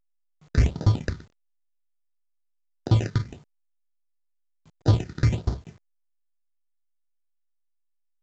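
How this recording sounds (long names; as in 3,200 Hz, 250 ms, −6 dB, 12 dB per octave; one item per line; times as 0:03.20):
aliases and images of a low sample rate 1,100 Hz, jitter 0%
phaser sweep stages 6, 1.5 Hz, lowest notch 700–2,500 Hz
a quantiser's noise floor 10 bits, dither none
A-law companding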